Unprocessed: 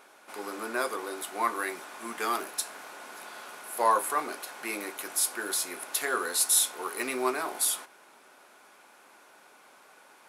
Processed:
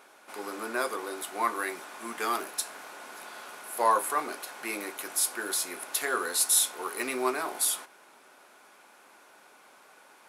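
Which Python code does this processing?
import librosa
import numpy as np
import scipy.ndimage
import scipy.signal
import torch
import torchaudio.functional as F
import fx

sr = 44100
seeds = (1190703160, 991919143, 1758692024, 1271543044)

y = scipy.signal.sosfilt(scipy.signal.butter(2, 68.0, 'highpass', fs=sr, output='sos'), x)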